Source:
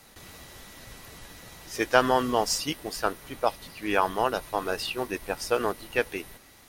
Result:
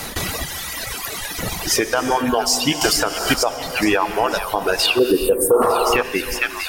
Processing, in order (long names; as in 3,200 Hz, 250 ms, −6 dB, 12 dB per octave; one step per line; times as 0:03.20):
0:00.46–0:01.39: low-shelf EQ 400 Hz −12 dB
reverb reduction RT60 1.6 s
delay with a high-pass on its return 452 ms, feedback 66%, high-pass 1,600 Hz, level −12.5 dB
downward compressor 4 to 1, threshold −40 dBFS, peak gain reduction 21.5 dB
0:04.99–0:05.62: drawn EQ curve 150 Hz 0 dB, 480 Hz +13 dB, 750 Hz −15 dB, 1,600 Hz −10 dB, 2,300 Hz −29 dB, 3,300 Hz −19 dB, 5,700 Hz −29 dB, 8,700 Hz +6 dB
reverb reduction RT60 1.2 s
reverb whose tail is shaped and stops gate 440 ms flat, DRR 9.5 dB
0:05.50–0:06.03: sound drawn into the spectrogram noise 360–1,400 Hz −44 dBFS
boost into a limiter +30.5 dB
0:02.81–0:03.34: multiband upward and downward compressor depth 100%
level −5.5 dB